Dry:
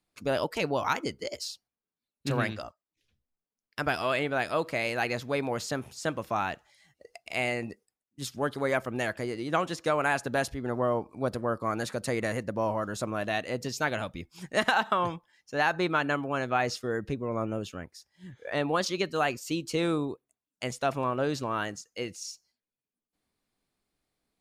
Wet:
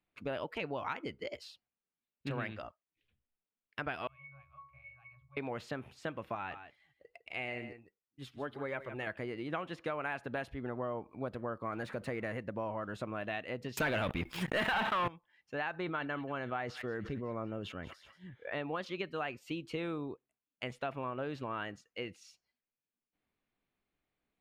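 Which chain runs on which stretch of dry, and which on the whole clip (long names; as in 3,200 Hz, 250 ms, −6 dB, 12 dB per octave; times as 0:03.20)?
0:04.07–0:05.37: Chebyshev band-stop filter 110–890 Hz, order 4 + low shelf with overshoot 800 Hz +8.5 dB, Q 1.5 + resonances in every octave C#, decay 0.37 s
0:06.35–0:09.07: single-tap delay 156 ms −12.5 dB + flanger 1.2 Hz, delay 1.9 ms, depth 1.1 ms, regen −59%
0:11.72–0:12.37: mu-law and A-law mismatch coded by mu + parametric band 3,200 Hz −4 dB 0.87 octaves
0:13.77–0:15.08: high-shelf EQ 5,300 Hz +9.5 dB + leveller curve on the samples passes 5 + level that may fall only so fast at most 41 dB per second
0:15.80–0:18.27: notch filter 2,500 Hz, Q 8.9 + delay with a high-pass on its return 183 ms, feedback 52%, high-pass 2,400 Hz, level −15.5 dB + level that may fall only so fast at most 60 dB per second
whole clip: high shelf with overshoot 4,100 Hz −13.5 dB, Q 1.5; downward compressor 3 to 1, threshold −31 dBFS; level −4.5 dB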